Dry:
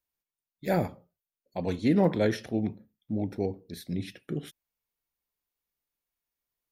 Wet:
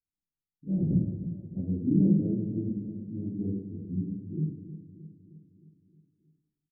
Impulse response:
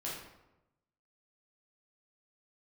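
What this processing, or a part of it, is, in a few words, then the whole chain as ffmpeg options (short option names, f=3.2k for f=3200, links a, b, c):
next room: -filter_complex "[0:a]lowpass=f=280:w=0.5412,lowpass=f=280:w=1.3066[a];[1:a]atrim=start_sample=2205[b];[a][b]afir=irnorm=-1:irlink=0,asplit=3[c][d][e];[c]afade=t=out:st=0.9:d=0.02[f];[d]tiltshelf=f=1.2k:g=10,afade=t=in:st=0.9:d=0.02,afade=t=out:st=1.6:d=0.02[g];[e]afade=t=in:st=1.6:d=0.02[h];[f][g][h]amix=inputs=3:normalize=0,aecho=1:1:311|622|933|1244|1555|1866:0.237|0.138|0.0798|0.0463|0.0268|0.0156"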